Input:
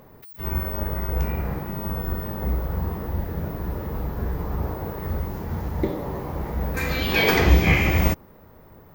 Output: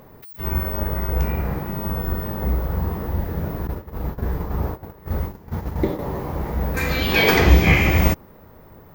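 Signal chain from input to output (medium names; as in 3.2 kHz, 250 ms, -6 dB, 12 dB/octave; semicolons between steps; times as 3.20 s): 3.67–5.99 s: gate -27 dBFS, range -17 dB; trim +3 dB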